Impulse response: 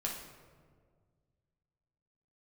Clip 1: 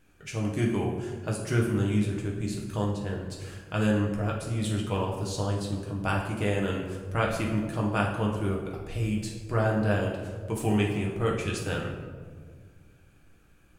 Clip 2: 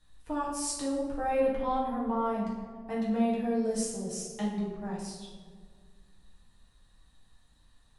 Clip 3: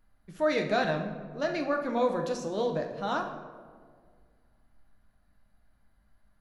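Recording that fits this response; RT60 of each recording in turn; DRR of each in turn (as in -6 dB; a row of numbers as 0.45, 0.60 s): 1; 1.8, 1.8, 1.8 s; -2.5, -7.0, 2.5 dB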